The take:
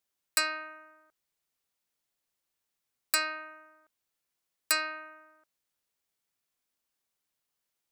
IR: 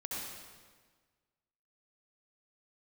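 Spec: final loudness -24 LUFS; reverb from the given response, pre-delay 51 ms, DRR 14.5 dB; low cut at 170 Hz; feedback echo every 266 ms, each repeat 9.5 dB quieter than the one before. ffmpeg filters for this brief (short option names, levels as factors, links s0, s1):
-filter_complex "[0:a]highpass=170,aecho=1:1:266|532|798|1064:0.335|0.111|0.0365|0.012,asplit=2[s0][s1];[1:a]atrim=start_sample=2205,adelay=51[s2];[s1][s2]afir=irnorm=-1:irlink=0,volume=0.158[s3];[s0][s3]amix=inputs=2:normalize=0,volume=2.37"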